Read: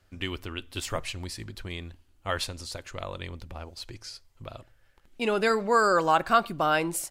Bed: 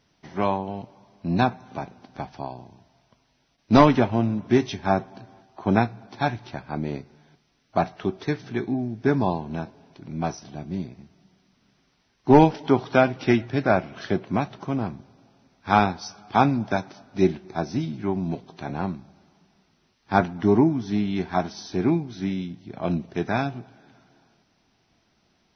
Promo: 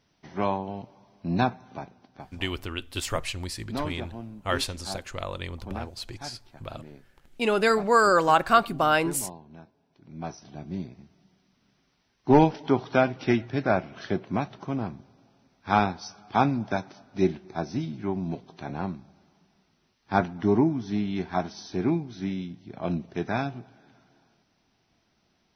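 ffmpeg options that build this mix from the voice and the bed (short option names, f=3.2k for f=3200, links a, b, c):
-filter_complex "[0:a]adelay=2200,volume=2.5dB[a];[1:a]volume=10.5dB,afade=t=out:st=1.49:d=0.98:silence=0.199526,afade=t=in:st=9.88:d=0.81:silence=0.211349[b];[a][b]amix=inputs=2:normalize=0"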